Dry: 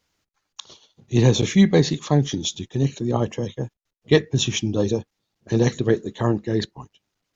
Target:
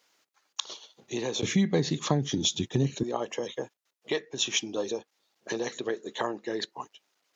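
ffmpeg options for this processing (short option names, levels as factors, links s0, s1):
-af "acompressor=threshold=0.0447:ratio=6,asetnsamples=n=441:p=0,asendcmd='1.43 highpass f 110;3.03 highpass f 470',highpass=400,volume=1.78"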